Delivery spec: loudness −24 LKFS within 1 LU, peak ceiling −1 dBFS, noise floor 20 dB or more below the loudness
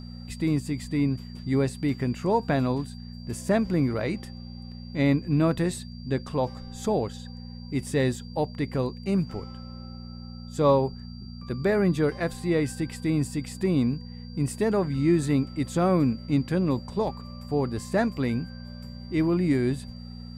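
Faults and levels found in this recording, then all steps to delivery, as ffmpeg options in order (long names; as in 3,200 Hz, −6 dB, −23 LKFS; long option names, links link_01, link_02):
mains hum 60 Hz; hum harmonics up to 240 Hz; level of the hum −37 dBFS; interfering tone 4,700 Hz; level of the tone −50 dBFS; integrated loudness −26.5 LKFS; sample peak −10.0 dBFS; target loudness −24.0 LKFS
→ -af "bandreject=frequency=60:width_type=h:width=4,bandreject=frequency=120:width_type=h:width=4,bandreject=frequency=180:width_type=h:width=4,bandreject=frequency=240:width_type=h:width=4"
-af "bandreject=frequency=4700:width=30"
-af "volume=2.5dB"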